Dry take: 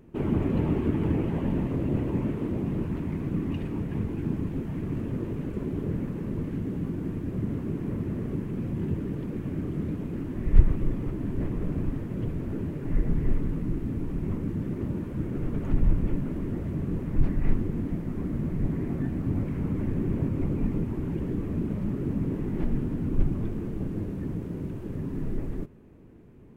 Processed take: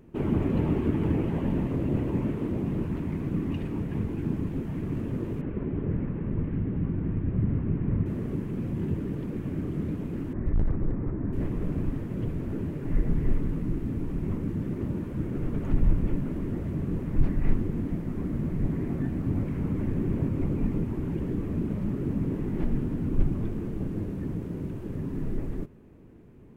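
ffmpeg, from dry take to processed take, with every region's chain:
-filter_complex "[0:a]asettb=1/sr,asplit=3[a][b][c];[a]atrim=end=5.414[d];[b]atrim=start=5.41:end=8.06,asetpts=PTS-STARTPTS,afade=t=in:d=0.004:c=qsin,afade=t=out:st=2.646:d=0.004:c=qsin,lowpass=f=2.7k:w=0.5412,lowpass=f=2.7k:w=1.3066,asubboost=boost=3.5:cutoff=180[e];[c]atrim=start=8.056[f];[d][e]acrossfade=d=0.004:c1=hsin:c2=qsin[g];[g][f]acrossfade=d=0.004:c1=qsin:c2=hsin,asettb=1/sr,asplit=3[h][i][j];[h]atrim=end=10.334[k];[i]atrim=start=10.33:end=11.33,asetpts=PTS-STARTPTS,afade=t=in:d=0.004:c=qsin,afade=t=out:st=0.996:d=0.004:c=qsin,lowpass=f=1.9k:w=0.5412,lowpass=f=1.9k:w=1.3066,equalizer=f=77:w=2.5:g=4,volume=19.5dB,asoftclip=hard,volume=-19.5dB[l];[j]atrim=start=11.326[m];[k][l]acrossfade=d=0.004:c1=hsin:c2=qsin[n];[n][m]acrossfade=d=0.004:c1=qsin:c2=hsin"

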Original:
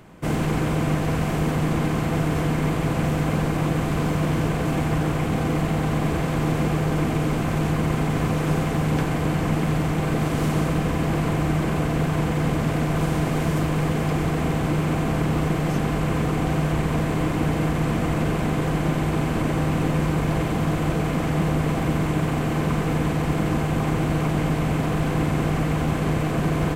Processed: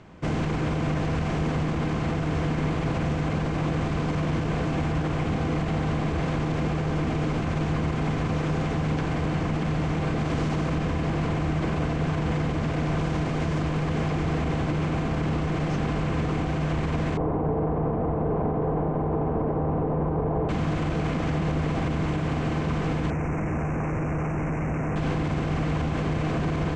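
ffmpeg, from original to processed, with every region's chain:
-filter_complex "[0:a]asettb=1/sr,asplit=3[a][b][c];[a]atrim=end=17.174[d];[b]atrim=start=17.17:end=20.49,asetpts=PTS-STARTPTS,afade=t=in:d=0.004:c=qsin,afade=t=out:st=3.316:d=0.004:c=qsin,lowpass=f=850:t=q:w=1.9,equalizer=f=440:w=7.3:g=10.5[e];[c]atrim=start=20.486[f];[d][e]acrossfade=d=0.004:c1=hsin:c2=qsin[g];[g][f]acrossfade=d=0.004:c1=qsin:c2=hsin,asettb=1/sr,asplit=3[h][i][j];[h]atrim=end=23.104[k];[i]atrim=start=23.1:end=24.96,asetpts=PTS-STARTPTS,afade=t=in:d=0.004:c=qsin,afade=t=out:st=1.856:d=0.004:c=qsin,highshelf=f=6k:g=-5.5,volume=23.5dB,asoftclip=hard,volume=-23.5dB,asuperstop=centerf=3900:order=8:qfactor=1.2[l];[j]atrim=start=24.956[m];[k][l]acrossfade=d=0.004:c1=hsin:c2=qsin[n];[n][m]acrossfade=d=0.004:c1=qsin:c2=hsin,lowpass=f=6.5k:w=0.5412,lowpass=f=6.5k:w=1.3066,equalizer=f=78:w=3.7:g=6.5,alimiter=limit=-16.5dB:level=0:latency=1:release=35,volume=-1.5dB"

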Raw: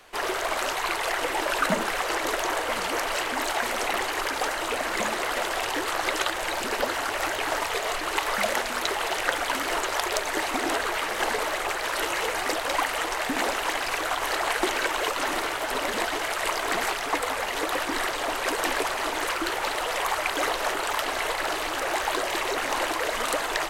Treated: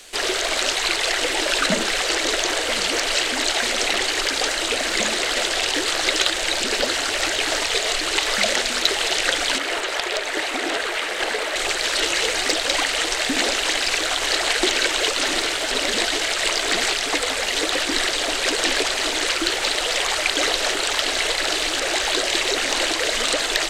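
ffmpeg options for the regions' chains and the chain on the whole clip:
-filter_complex "[0:a]asettb=1/sr,asplit=3[a][b][c];[a]atrim=end=9.584[d];[b]atrim=start=9.58:end=11.56,asetpts=PTS-STARTPTS,afade=t=in:d=0.004:c=qsin,afade=t=out:st=1.976:d=0.004:c=qsin,bass=f=250:g=-12,treble=f=4k:g=-14,aeval=exprs='clip(val(0),-1,0.0891)':c=same[e];[c]atrim=start=11.556[f];[d][e]acrossfade=d=0.004:c1=hsin:c2=qsin[g];[g][f]acrossfade=d=0.004:c1=qsin:c2=hsin,acrossover=split=5900[h][i];[i]acompressor=threshold=-51dB:ratio=4:attack=1:release=60[j];[h][j]amix=inputs=2:normalize=0,equalizer=f=125:t=o:w=1:g=-5,equalizer=f=1k:t=o:w=1:g=-10,equalizer=f=4k:t=o:w=1:g=6,equalizer=f=8k:t=o:w=1:g=12,acontrast=90,volume=-1dB"

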